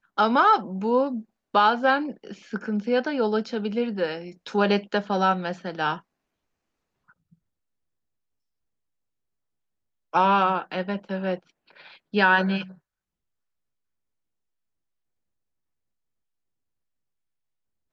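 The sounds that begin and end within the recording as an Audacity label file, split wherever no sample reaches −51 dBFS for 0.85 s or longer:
7.090000	7.340000	sound
10.130000	12.780000	sound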